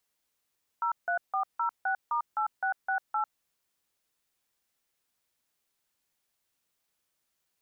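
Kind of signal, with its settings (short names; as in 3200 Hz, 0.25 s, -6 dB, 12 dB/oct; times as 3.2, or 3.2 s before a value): DTMF "03406*8668", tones 98 ms, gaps 0.16 s, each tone -28.5 dBFS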